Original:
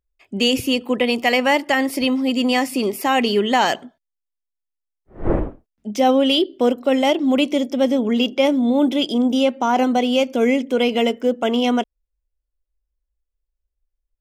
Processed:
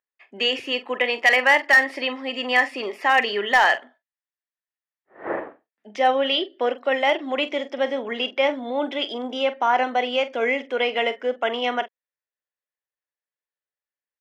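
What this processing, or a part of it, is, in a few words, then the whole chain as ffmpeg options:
megaphone: -filter_complex "[0:a]asettb=1/sr,asplit=3[a][b][c];[a]atrim=end=6.224[d];[b]atrim=start=6.22:end=6.76,asetpts=PTS-STARTPTS,afade=t=in:d=0.004:c=qsin,afade=t=out:st=0.536:d=0.004:c=qsin,lowpass=7k[e];[c]atrim=start=6.756[f];[d][e]acrossfade=d=0.004:c1=hsin:c2=qsin[g];[g][f]acrossfade=d=0.004:c1=qsin:c2=hsin,highpass=610,lowpass=3k,equalizer=f=1.8k:t=o:w=0.33:g=10,asoftclip=type=hard:threshold=-9dB,asplit=2[h][i];[i]adelay=44,volume=-13dB[j];[h][j]amix=inputs=2:normalize=0"

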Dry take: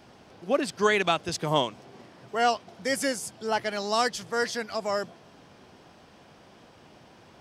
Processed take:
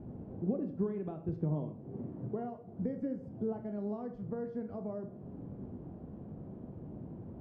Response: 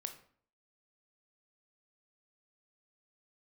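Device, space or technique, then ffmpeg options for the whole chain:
television next door: -filter_complex "[0:a]acompressor=threshold=-39dB:ratio=5,lowpass=260[a];[1:a]atrim=start_sample=2205[b];[a][b]afir=irnorm=-1:irlink=0,volume=16dB"

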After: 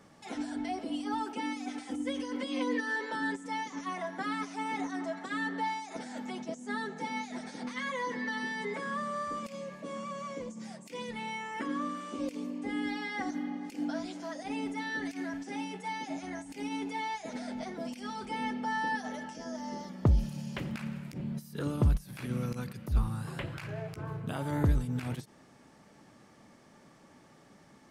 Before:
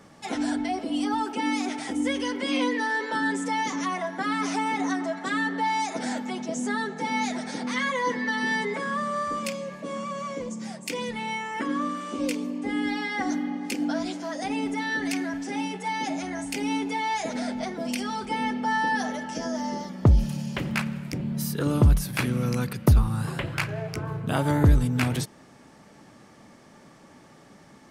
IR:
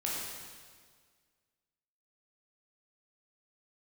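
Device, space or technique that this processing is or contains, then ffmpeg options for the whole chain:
de-esser from a sidechain: -filter_complex "[0:a]asettb=1/sr,asplit=3[a][b][c];[a]atrim=end=1.564[d];[b]atrim=start=1.56:end=2.96,asetpts=PTS-STARTPTS,afade=t=in:d=0.004:c=qsin,afade=t=out:st=1.396:d=0.004:c=qsin,aecho=1:1:3.9:0.71,atrim=end_sample=61740[e];[c]atrim=start=2.956[f];[d][e]acrossfade=d=0.004:c1=hsin:c2=qsin[g];[g][f]acrossfade=d=0.004:c1=qsin:c2=hsin,asplit=2[h][i];[i]highpass=f=5.6k:w=0.5412,highpass=f=5.6k:w=1.3066,apad=whole_len=1230811[j];[h][j]sidechaincompress=threshold=-48dB:ratio=8:attack=4.5:release=44,volume=-6.5dB"

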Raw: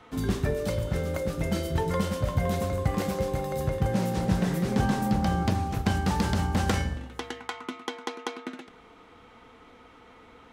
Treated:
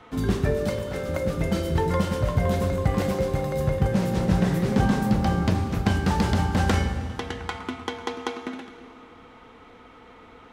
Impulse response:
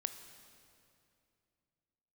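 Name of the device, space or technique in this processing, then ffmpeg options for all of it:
swimming-pool hall: -filter_complex "[0:a]asettb=1/sr,asplit=3[a][b][c];[a]atrim=end=0.694[d];[b]atrim=start=0.69:end=1.09,asetpts=PTS-STARTPTS,afade=t=in:d=0.004:c=qsin,afade=t=out:st=0.396:d=0.004:c=qsin,highpass=f=410:p=1[e];[c]atrim=start=1.086[f];[d][e]acrossfade=d=0.004:c1=hsin:c2=qsin[g];[g][f]acrossfade=d=0.004:c1=qsin:c2=hsin[h];[1:a]atrim=start_sample=2205[i];[h][i]afir=irnorm=-1:irlink=0,highshelf=f=5.3k:g=-5.5,volume=4.5dB"

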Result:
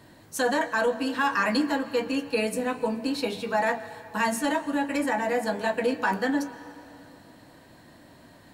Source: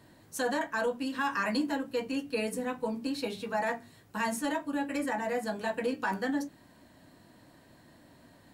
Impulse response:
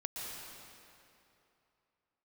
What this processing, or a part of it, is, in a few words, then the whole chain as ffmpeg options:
filtered reverb send: -filter_complex "[0:a]asplit=2[a][b];[b]highpass=300,lowpass=7.7k[c];[1:a]atrim=start_sample=2205[d];[c][d]afir=irnorm=-1:irlink=0,volume=-12.5dB[e];[a][e]amix=inputs=2:normalize=0,volume=5dB"

